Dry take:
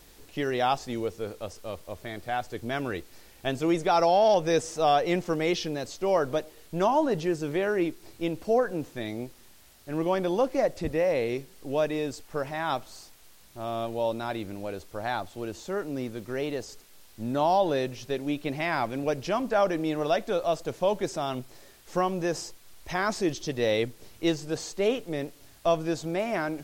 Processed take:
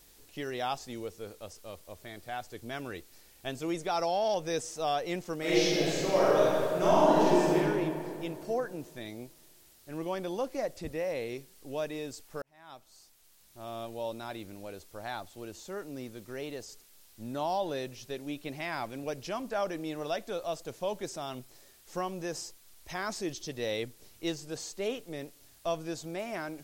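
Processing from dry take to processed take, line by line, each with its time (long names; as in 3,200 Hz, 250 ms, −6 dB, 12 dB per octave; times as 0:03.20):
0:05.38–0:07.56: thrown reverb, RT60 2.7 s, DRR −9.5 dB
0:12.42–0:13.72: fade in
whole clip: high-shelf EQ 4,000 Hz +8 dB; level −8.5 dB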